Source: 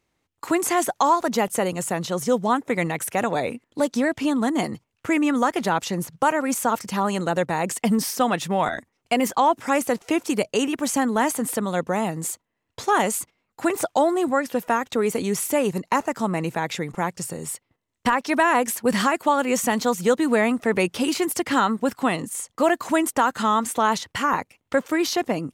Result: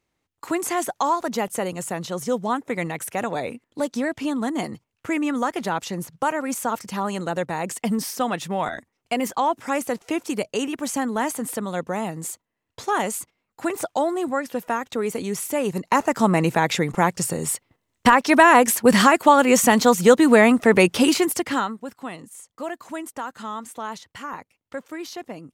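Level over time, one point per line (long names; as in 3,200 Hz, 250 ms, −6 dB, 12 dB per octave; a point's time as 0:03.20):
0:15.54 −3 dB
0:16.23 +6 dB
0:21.06 +6 dB
0:21.61 −3.5 dB
0:21.79 −11.5 dB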